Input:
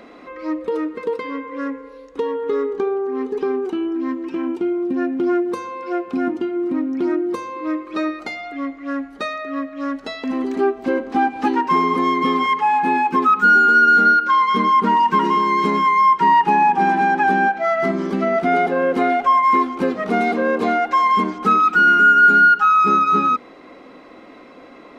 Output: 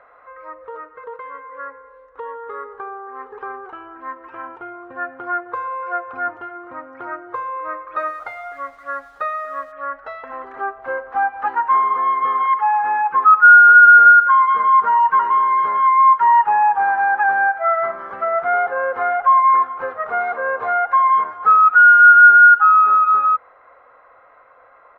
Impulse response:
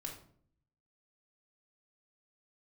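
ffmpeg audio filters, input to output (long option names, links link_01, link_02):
-filter_complex "[0:a]dynaudnorm=framelen=720:gausssize=9:maxgain=8dB,firequalizer=gain_entry='entry(120,0);entry(180,-23);entry(320,-20);entry(510,2);entry(1400,12);entry(2400,-6);entry(4600,-20);entry(8900,-26)':delay=0.05:min_phase=1,asplit=3[link_01][link_02][link_03];[link_01]afade=type=out:start_time=7.98:duration=0.02[link_04];[link_02]aeval=exprs='sgn(val(0))*max(abs(val(0))-0.00398,0)':channel_layout=same,afade=type=in:start_time=7.98:duration=0.02,afade=type=out:start_time=9.71:duration=0.02[link_05];[link_03]afade=type=in:start_time=9.71:duration=0.02[link_06];[link_04][link_05][link_06]amix=inputs=3:normalize=0,volume=-9.5dB"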